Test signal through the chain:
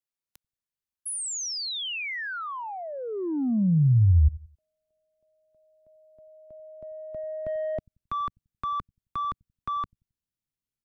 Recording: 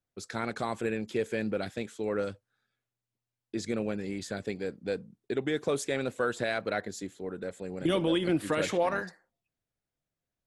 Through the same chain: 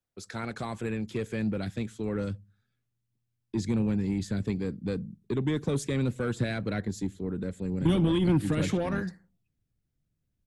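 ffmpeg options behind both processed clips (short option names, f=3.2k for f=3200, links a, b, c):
-filter_complex "[0:a]asubboost=boost=7:cutoff=250,acrossover=split=200|2200[a][b][c];[a]aecho=1:1:89|178|267:0.112|0.037|0.0122[d];[b]asoftclip=type=tanh:threshold=-23.5dB[e];[d][e][c]amix=inputs=3:normalize=0,volume=-1.5dB"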